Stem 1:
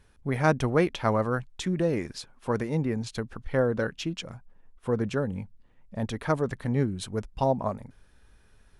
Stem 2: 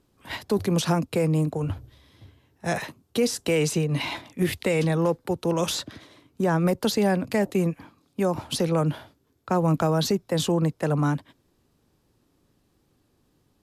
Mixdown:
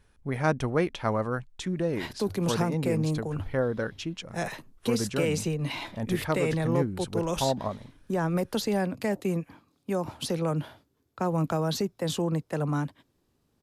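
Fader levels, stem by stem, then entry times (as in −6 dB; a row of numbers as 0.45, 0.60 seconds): −2.5, −5.0 decibels; 0.00, 1.70 seconds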